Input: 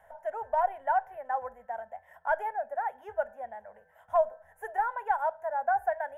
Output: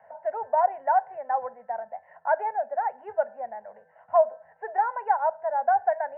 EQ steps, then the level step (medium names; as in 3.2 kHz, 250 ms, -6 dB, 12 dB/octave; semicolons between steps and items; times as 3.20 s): high-pass 120 Hz 24 dB/octave; rippled Chebyshev low-pass 2.9 kHz, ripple 3 dB; treble shelf 2.1 kHz -10.5 dB; +6.5 dB